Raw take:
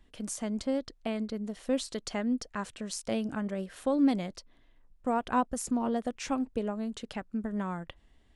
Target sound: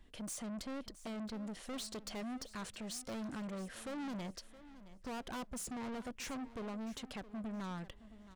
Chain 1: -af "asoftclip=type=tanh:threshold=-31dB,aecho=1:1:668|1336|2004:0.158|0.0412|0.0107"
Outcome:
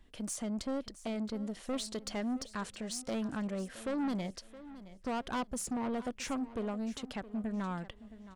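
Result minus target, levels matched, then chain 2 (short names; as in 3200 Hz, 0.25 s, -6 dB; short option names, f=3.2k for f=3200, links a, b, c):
soft clip: distortion -5 dB
-af "asoftclip=type=tanh:threshold=-40.5dB,aecho=1:1:668|1336|2004:0.158|0.0412|0.0107"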